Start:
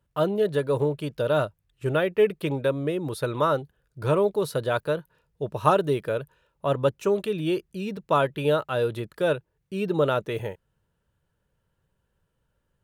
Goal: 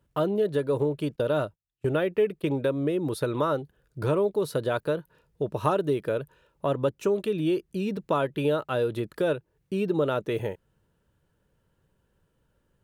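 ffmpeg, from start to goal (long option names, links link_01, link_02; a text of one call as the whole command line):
ffmpeg -i in.wav -filter_complex "[0:a]asettb=1/sr,asplit=3[link_01][link_02][link_03];[link_01]atrim=end=1.164[link_04];[link_02]atrim=start=1.16:end=3.21,asetpts=PTS-STARTPTS,afade=type=in:duration=0.004:curve=qsin,afade=type=out:start_time=2.046:duration=0.004:curve=qsin,agate=range=-27dB:threshold=-35dB:ratio=16:detection=peak[link_05];[link_03]atrim=start=3.206[link_06];[link_04][link_05]acrossfade=duration=0.004:curve1=hsin:curve2=qsin[link_07];[link_07][link_06]acrossfade=duration=0.004:curve1=qsin:curve2=hsin,equalizer=frequency=300:width_type=o:width=1.3:gain=5.5,acompressor=threshold=-30dB:ratio=2,volume=2.5dB" out.wav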